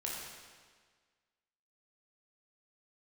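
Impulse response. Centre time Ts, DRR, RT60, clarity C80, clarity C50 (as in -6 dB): 91 ms, -4.0 dB, 1.6 s, 1.5 dB, -0.5 dB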